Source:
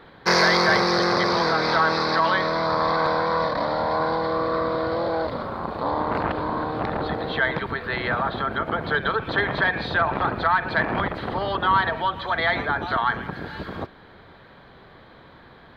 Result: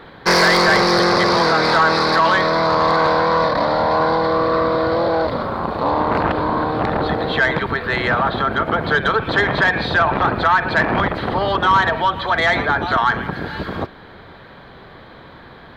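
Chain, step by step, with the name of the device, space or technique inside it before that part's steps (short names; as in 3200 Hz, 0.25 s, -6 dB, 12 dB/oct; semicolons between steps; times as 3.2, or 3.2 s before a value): saturation between pre-emphasis and de-emphasis (high shelf 3600 Hz +6.5 dB; soft clip -13.5 dBFS, distortion -16 dB; high shelf 3600 Hz -6.5 dB); gain +7.5 dB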